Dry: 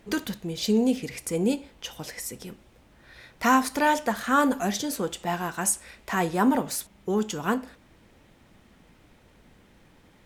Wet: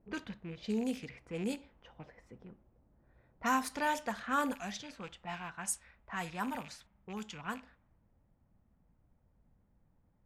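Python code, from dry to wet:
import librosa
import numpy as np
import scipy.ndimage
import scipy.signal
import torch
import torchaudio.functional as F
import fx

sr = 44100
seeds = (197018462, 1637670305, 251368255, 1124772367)

y = fx.rattle_buzz(x, sr, strikes_db=-39.0, level_db=-29.0)
y = fx.env_lowpass(y, sr, base_hz=590.0, full_db=-19.5)
y = fx.peak_eq(y, sr, hz=370.0, db=fx.steps((0.0, -4.5), (4.55, -13.5)), octaves=1.6)
y = y * 10.0 ** (-9.0 / 20.0)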